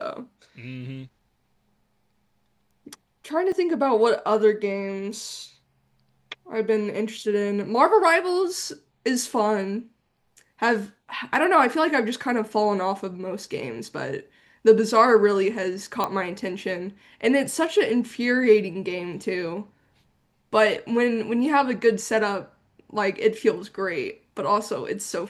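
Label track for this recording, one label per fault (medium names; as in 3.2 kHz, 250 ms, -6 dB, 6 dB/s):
3.520000	3.520000	dropout 3.7 ms
16.040000	16.040000	pop -11 dBFS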